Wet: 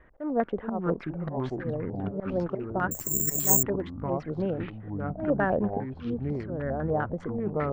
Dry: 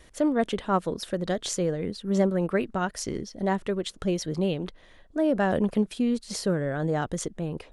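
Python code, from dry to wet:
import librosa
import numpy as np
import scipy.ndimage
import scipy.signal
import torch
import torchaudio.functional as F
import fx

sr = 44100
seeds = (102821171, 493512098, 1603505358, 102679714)

y = fx.wiener(x, sr, points=9)
y = fx.auto_swell(y, sr, attack_ms=176.0)
y = fx.echo_pitch(y, sr, ms=358, semitones=-5, count=3, db_per_echo=-3.0)
y = fx.filter_lfo_lowpass(y, sr, shape='square', hz=5.0, low_hz=740.0, high_hz=1600.0, q=2.0)
y = fx.resample_bad(y, sr, factor=6, down='none', up='zero_stuff', at=(2.91, 3.63))
y = y * librosa.db_to_amplitude(-3.5)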